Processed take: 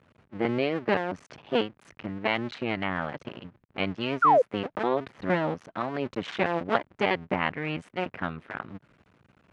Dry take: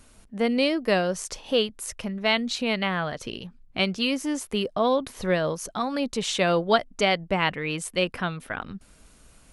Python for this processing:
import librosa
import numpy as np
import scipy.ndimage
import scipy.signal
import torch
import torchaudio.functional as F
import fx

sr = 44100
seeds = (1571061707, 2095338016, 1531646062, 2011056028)

y = fx.cycle_switch(x, sr, every=2, mode='muted')
y = scipy.signal.sosfilt(scipy.signal.cheby1(2, 1.0, [120.0, 2100.0], 'bandpass', fs=sr, output='sos'), y)
y = fx.spec_paint(y, sr, seeds[0], shape='fall', start_s=4.22, length_s=0.2, low_hz=460.0, high_hz=1500.0, level_db=-18.0)